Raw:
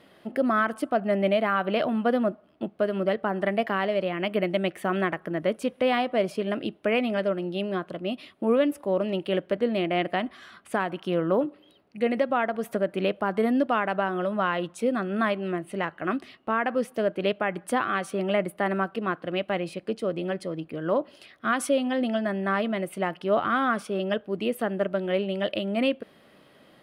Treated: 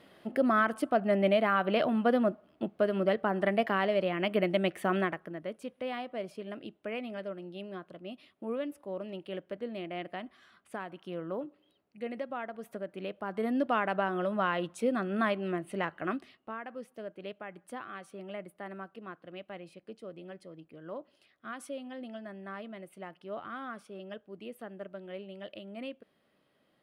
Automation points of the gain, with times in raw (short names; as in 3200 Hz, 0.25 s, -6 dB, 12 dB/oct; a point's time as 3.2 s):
4.96 s -2.5 dB
5.41 s -13 dB
13.08 s -13 dB
13.74 s -4 dB
16.01 s -4 dB
16.64 s -16.5 dB